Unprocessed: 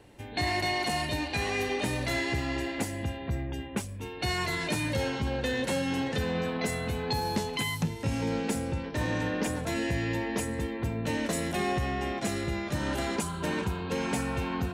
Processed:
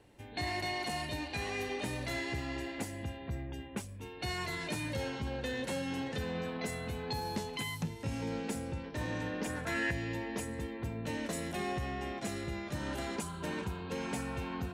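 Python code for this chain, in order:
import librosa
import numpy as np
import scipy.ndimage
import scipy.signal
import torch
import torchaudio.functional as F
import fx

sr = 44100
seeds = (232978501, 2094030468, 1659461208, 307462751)

y = fx.peak_eq(x, sr, hz=1600.0, db=fx.line((9.48, 6.5), (9.9, 14.5)), octaves=1.1, at=(9.48, 9.9), fade=0.02)
y = y * librosa.db_to_amplitude(-7.0)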